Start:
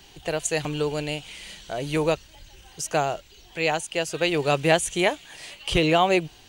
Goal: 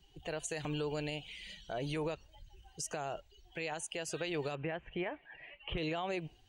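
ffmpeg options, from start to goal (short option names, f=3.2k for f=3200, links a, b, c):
-filter_complex "[0:a]asettb=1/sr,asplit=3[a][b][c];[a]atrim=end=4.554[d];[b]atrim=start=4.55:end=5.78,asetpts=PTS-STARTPTS,afade=t=in:d=0.004:c=qsin,afade=t=out:st=1.226:d=0.004:c=qsin,lowpass=f=2.6k:w=0.5412,lowpass=f=2.6k:w=1.3066[e];[c]atrim=start=5.776[f];[d][e]acrossfade=d=0.004:c1=hsin:c2=qsin[g];[g][f]acrossfade=d=0.004:c1=qsin:c2=hsin,afftdn=nr=16:nf=-44,adynamicequalizer=threshold=0.00708:dfrequency=1700:dqfactor=3.6:tfrequency=1700:tqfactor=3.6:attack=5:release=100:ratio=0.375:range=1.5:mode=boostabove:tftype=bell,acompressor=threshold=-23dB:ratio=3,alimiter=limit=-22.5dB:level=0:latency=1:release=69,volume=-6dB"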